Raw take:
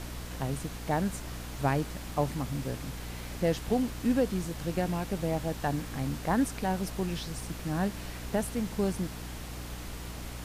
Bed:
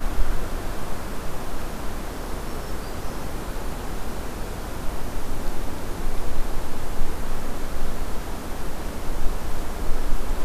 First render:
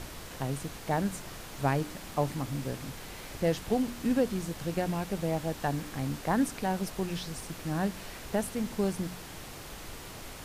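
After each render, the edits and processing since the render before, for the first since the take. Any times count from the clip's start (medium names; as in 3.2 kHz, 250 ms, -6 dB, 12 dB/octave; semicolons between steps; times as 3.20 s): de-hum 60 Hz, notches 5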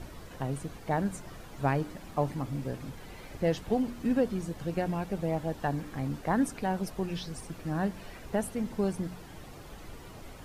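noise reduction 10 dB, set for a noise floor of -45 dBFS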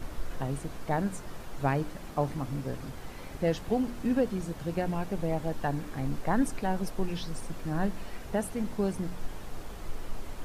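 add bed -15.5 dB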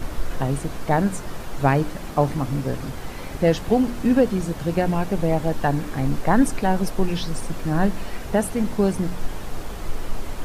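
trim +9.5 dB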